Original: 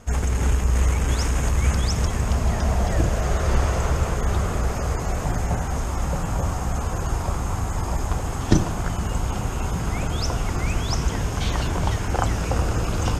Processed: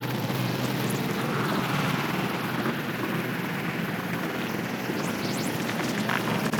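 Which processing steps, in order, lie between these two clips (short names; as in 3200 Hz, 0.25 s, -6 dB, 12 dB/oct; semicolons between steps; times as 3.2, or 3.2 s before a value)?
HPF 84 Hz 24 dB/oct; notch 4400 Hz, Q 6.2; speed mistake 7.5 ips tape played at 15 ips; grains, pitch spread up and down by 0 st; Doppler distortion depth 0.44 ms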